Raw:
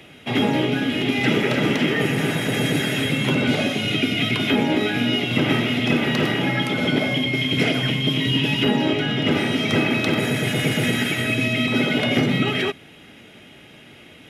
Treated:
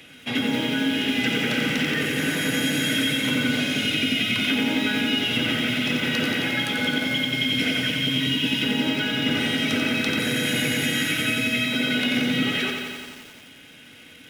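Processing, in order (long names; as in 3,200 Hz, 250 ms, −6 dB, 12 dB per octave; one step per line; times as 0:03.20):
guitar amp tone stack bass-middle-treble 5-5-5
mains-hum notches 60/120 Hz
hollow resonant body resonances 270/480/1,500 Hz, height 11 dB
downward compressor, threshold −30 dBFS, peak gain reduction 6 dB
feedback echo at a low word length 89 ms, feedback 80%, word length 9 bits, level −5 dB
level +8.5 dB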